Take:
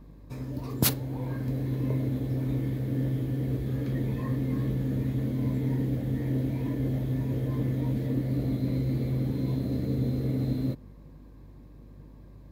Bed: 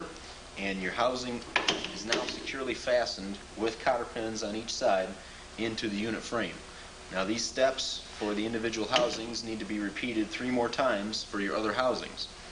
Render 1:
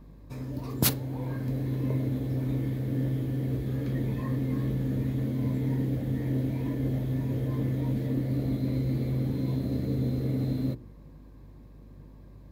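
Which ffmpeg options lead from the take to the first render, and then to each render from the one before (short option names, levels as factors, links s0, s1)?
-af "bandreject=f=60:t=h:w=4,bandreject=f=120:t=h:w=4,bandreject=f=180:t=h:w=4,bandreject=f=240:t=h:w=4,bandreject=f=300:t=h:w=4,bandreject=f=360:t=h:w=4,bandreject=f=420:t=h:w=4,bandreject=f=480:t=h:w=4"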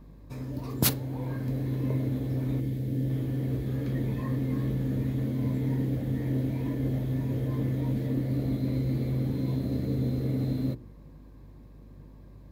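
-filter_complex "[0:a]asettb=1/sr,asplit=3[s0][s1][s2];[s0]atrim=end=2.604[s3];[s1]atrim=start=2.6:end=3.1,asetpts=PTS-STARTPTS,afade=t=in:d=0.004:c=qsin,afade=t=out:st=0.496:d=0.004:c=qsin,equalizer=f=1200:w=0.86:g=-10.5[s4];[s2]atrim=start=3.096[s5];[s3][s4]acrossfade=d=0.004:c1=hsin:c2=qsin[s6];[s6][s5]acrossfade=d=0.004:c1=qsin:c2=hsin"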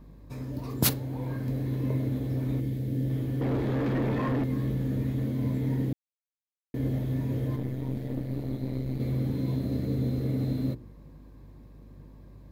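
-filter_complex "[0:a]asettb=1/sr,asplit=3[s0][s1][s2];[s0]atrim=end=3.414[s3];[s1]atrim=start=3.41:end=4.44,asetpts=PTS-STARTPTS,afade=t=in:d=0.004:c=qsin,afade=t=out:st=1.026:d=0.004:c=qsin,asplit=2[s4][s5];[s5]highpass=f=720:p=1,volume=20,asoftclip=type=tanh:threshold=0.106[s6];[s4][s6]amix=inputs=2:normalize=0,lowpass=f=1100:p=1,volume=0.501[s7];[s2]atrim=start=4.436[s8];[s3][s7]acrossfade=d=0.004:c1=hsin:c2=qsin[s9];[s9][s8]acrossfade=d=0.004:c1=qsin:c2=hsin,asettb=1/sr,asplit=3[s10][s11][s12];[s10]atrim=end=7.564[s13];[s11]atrim=start=7.56:end=9,asetpts=PTS-STARTPTS,afade=t=in:d=0.004:c=qsin,afade=t=out:st=1.436:d=0.004:c=qsin,aeval=exprs='(tanh(11.2*val(0)+0.8)-tanh(0.8))/11.2':c=same[s14];[s12]atrim=start=8.996[s15];[s13][s14]acrossfade=d=0.004:c1=hsin:c2=qsin[s16];[s16][s15]acrossfade=d=0.004:c1=qsin:c2=hsin,asplit=3[s17][s18][s19];[s17]atrim=end=5.93,asetpts=PTS-STARTPTS,afade=t=out:st=5.926:d=0.004:c=hsin[s20];[s18]atrim=start=5.93:end=6.74,asetpts=PTS-STARTPTS,volume=0[s21];[s19]atrim=start=6.74,asetpts=PTS-STARTPTS,afade=t=in:d=0.004:c=hsin[s22];[s20][s21][s22]concat=n=3:v=0:a=1"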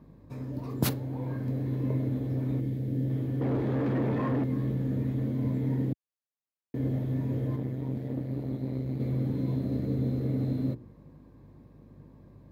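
-af "highpass=83,highshelf=f=2300:g=-9"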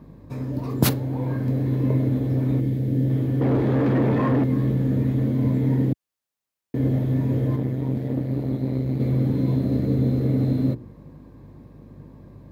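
-af "volume=2.51"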